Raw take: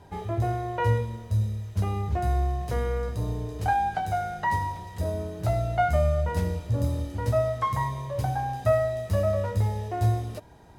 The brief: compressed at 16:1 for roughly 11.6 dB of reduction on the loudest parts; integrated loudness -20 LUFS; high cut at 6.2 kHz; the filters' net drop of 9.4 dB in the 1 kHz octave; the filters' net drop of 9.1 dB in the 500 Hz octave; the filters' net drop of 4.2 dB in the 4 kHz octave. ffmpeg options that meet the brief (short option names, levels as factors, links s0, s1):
-af "lowpass=6200,equalizer=f=500:t=o:g=-8.5,equalizer=f=1000:t=o:g=-9,equalizer=f=4000:t=o:g=-4,acompressor=threshold=0.0251:ratio=16,volume=7.94"